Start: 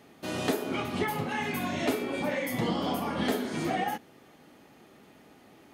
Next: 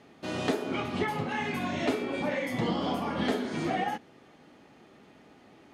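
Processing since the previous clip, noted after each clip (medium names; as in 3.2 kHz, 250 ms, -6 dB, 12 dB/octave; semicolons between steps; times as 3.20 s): Bessel low-pass 5.8 kHz, order 2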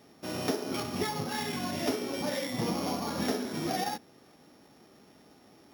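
sorted samples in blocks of 8 samples; trim -2 dB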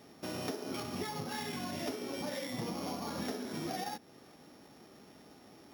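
compression 2.5:1, threshold -40 dBFS, peak gain reduction 10.5 dB; trim +1 dB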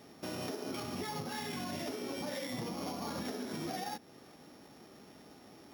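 peak limiter -31.5 dBFS, peak gain reduction 5 dB; trim +1 dB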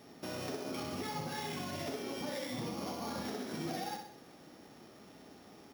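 feedback delay 63 ms, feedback 51%, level -6 dB; trim -1 dB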